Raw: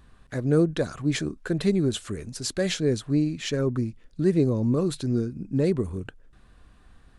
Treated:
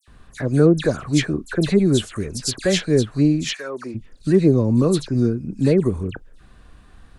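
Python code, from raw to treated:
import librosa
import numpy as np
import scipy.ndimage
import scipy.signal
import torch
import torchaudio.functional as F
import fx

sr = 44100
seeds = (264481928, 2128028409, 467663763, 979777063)

y = fx.highpass(x, sr, hz=fx.line((3.44, 1200.0), (3.86, 420.0)), slope=12, at=(3.44, 3.86), fade=0.02)
y = fx.dispersion(y, sr, late='lows', ms=79.0, hz=2800.0)
y = F.gain(torch.from_numpy(y), 6.5).numpy()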